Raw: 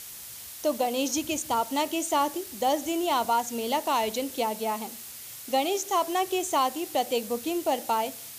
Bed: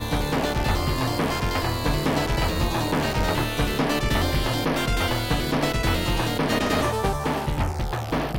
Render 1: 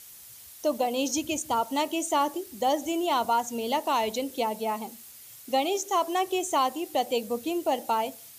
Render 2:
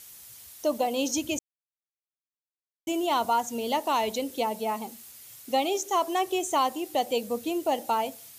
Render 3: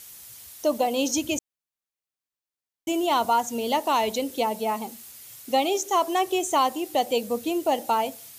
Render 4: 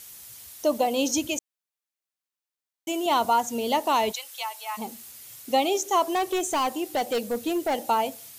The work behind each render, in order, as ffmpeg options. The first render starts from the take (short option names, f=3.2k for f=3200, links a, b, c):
-af "afftdn=nr=8:nf=-42"
-filter_complex "[0:a]asplit=3[a][b][c];[a]atrim=end=1.39,asetpts=PTS-STARTPTS,afade=t=out:st=1.386:d=0.004:c=hsin[d];[b]atrim=start=1.39:end=2.87,asetpts=PTS-STARTPTS,volume=0[e];[c]atrim=start=2.87,asetpts=PTS-STARTPTS,afade=t=in:d=0.004:c=hsin[f];[d][e][f]concat=n=3:v=0:a=1"
-af "volume=3dB"
-filter_complex "[0:a]asettb=1/sr,asplit=3[a][b][c];[a]atrim=end=1.274[d];[b]atrim=start=1.27:end=3.06,asetpts=PTS-STARTPTS,afade=t=in:d=0.004:c=qsin,afade=t=out:st=1.786:d=0.004:c=qsin,lowshelf=f=230:g=-11.5[e];[c]atrim=start=3.056[f];[d][e]acrossfade=d=0.004:c1=hsin:c2=qsin[g];[g][f]acrossfade=d=0.004:c1=qsin:c2=hsin,asplit=3[h][i][j];[h]afade=t=out:st=4.11:d=0.02[k];[i]highpass=f=1k:w=0.5412,highpass=f=1k:w=1.3066,afade=t=in:st=4.11:d=0.02,afade=t=out:st=4.77:d=0.02[l];[j]afade=t=in:st=4.77:d=0.02[m];[k][l][m]amix=inputs=3:normalize=0,asettb=1/sr,asplit=3[n][o][p];[n]atrim=end=6.154[q];[o]atrim=start=6.15:end=7.79,asetpts=PTS-STARTPTS,afade=t=in:d=0.004:c=qsin,afade=t=out:st=1.636:d=0.004:c=qsin,volume=21.5dB,asoftclip=hard,volume=-21.5dB[r];[p]atrim=start=7.786[s];[q][r]acrossfade=d=0.004:c1=hsin:c2=qsin[t];[t][s]acrossfade=d=0.004:c1=qsin:c2=hsin"